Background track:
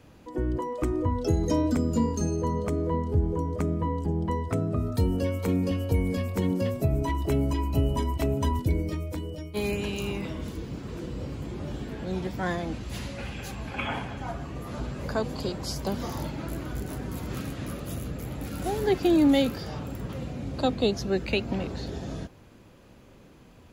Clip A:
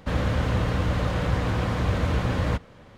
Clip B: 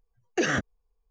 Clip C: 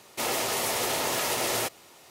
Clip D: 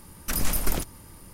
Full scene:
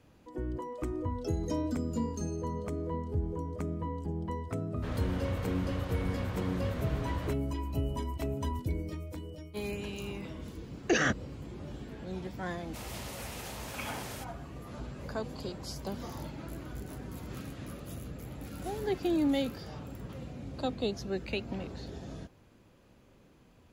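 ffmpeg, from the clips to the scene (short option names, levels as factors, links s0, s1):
-filter_complex "[0:a]volume=0.398[s0];[1:a]atrim=end=2.97,asetpts=PTS-STARTPTS,volume=0.237,afade=t=in:d=0.004:c=hsin,afade=t=out:st=2.966:d=0.004:c=hsin,adelay=4760[s1];[2:a]atrim=end=1.1,asetpts=PTS-STARTPTS,volume=0.841,afade=t=in:d=0.004:c=hsin,afade=t=out:st=1.096:d=0.004:c=hsin,adelay=10520[s2];[3:a]atrim=end=2.1,asetpts=PTS-STARTPTS,volume=0.15,afade=t=in:d=0.004:c=hsin,afade=t=out:st=2.096:d=0.004:c=hsin,adelay=12560[s3];[s0][s1][s2][s3]amix=inputs=4:normalize=0"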